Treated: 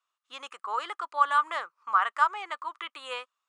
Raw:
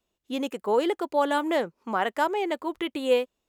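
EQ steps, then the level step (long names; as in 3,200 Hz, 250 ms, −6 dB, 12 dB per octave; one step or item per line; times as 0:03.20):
high-pass with resonance 1,200 Hz, resonance Q 7.9
elliptic low-pass filter 9,800 Hz, stop band 40 dB
−5.0 dB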